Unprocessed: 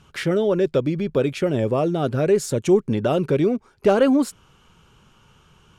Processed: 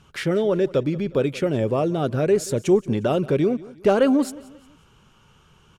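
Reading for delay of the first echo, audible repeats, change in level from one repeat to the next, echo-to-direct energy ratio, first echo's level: 179 ms, 2, −8.0 dB, −19.5 dB, −20.0 dB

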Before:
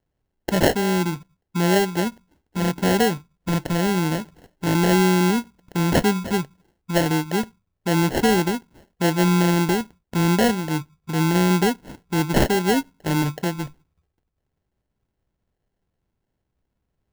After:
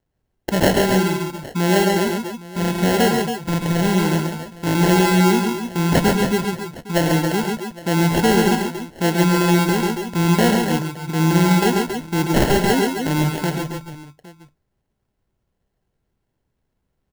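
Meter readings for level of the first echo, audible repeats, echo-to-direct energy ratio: −9.5 dB, 4, −2.0 dB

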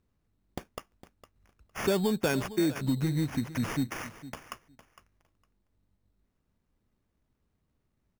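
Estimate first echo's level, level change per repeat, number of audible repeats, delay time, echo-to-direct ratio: −15.5 dB, −16.5 dB, 2, 458 ms, −15.5 dB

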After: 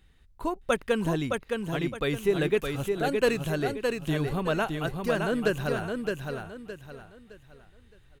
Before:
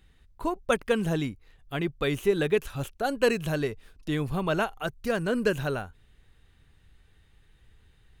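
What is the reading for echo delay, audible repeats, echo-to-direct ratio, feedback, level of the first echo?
615 ms, 4, −4.0 dB, 32%, −4.5 dB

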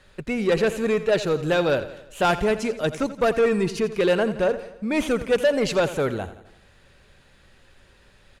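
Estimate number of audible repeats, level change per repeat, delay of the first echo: 4, −5.5 dB, 85 ms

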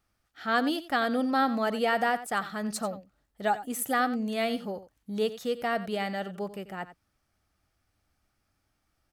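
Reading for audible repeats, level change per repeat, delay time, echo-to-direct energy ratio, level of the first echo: 1, repeats not evenly spaced, 90 ms, −14.5 dB, −14.5 dB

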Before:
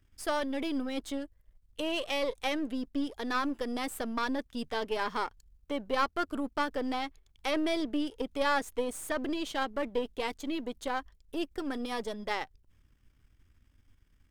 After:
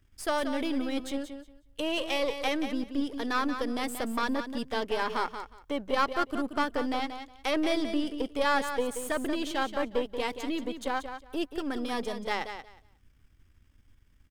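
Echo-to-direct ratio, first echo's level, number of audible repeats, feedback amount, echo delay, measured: −9.0 dB, −9.0 dB, 2, 18%, 181 ms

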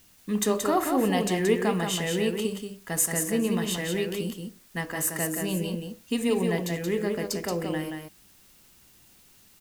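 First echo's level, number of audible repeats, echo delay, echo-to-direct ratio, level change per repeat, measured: −5.0 dB, 1, 177 ms, −5.0 dB, repeats not evenly spaced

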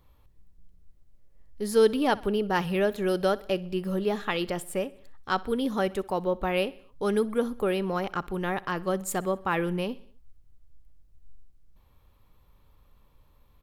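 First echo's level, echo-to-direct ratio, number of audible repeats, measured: −21.5 dB, −20.0 dB, 3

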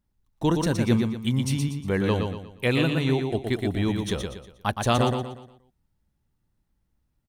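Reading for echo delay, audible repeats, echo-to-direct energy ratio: 119 ms, 4, −4.5 dB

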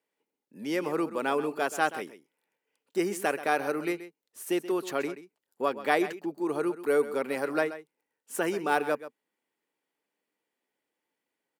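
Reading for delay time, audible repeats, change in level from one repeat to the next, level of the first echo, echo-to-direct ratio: 130 ms, 1, repeats not evenly spaced, −14.0 dB, −14.0 dB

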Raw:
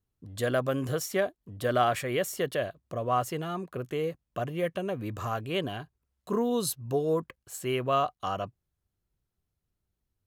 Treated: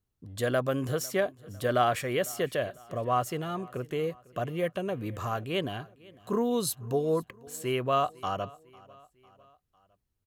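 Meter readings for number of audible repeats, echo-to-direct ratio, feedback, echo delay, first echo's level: 3, −22.0 dB, 51%, 501 ms, −23.0 dB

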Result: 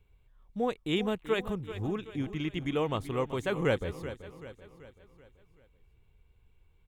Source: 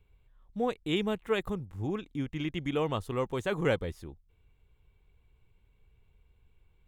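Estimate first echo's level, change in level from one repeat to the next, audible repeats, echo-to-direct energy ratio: −13.0 dB, −6.0 dB, 4, −12.0 dB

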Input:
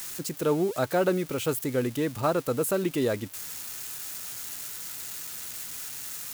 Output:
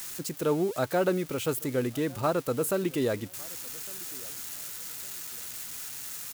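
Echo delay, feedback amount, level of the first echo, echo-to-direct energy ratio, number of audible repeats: 1,157 ms, repeats not evenly spaced, −24.0 dB, −23.5 dB, 1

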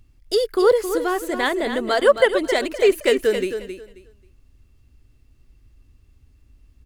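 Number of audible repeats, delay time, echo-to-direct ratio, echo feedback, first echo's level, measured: 2, 268 ms, −9.0 dB, 21%, −9.0 dB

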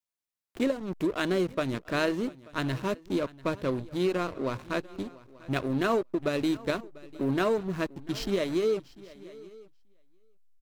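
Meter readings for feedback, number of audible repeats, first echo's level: repeats not evenly spaced, 2, −21.0 dB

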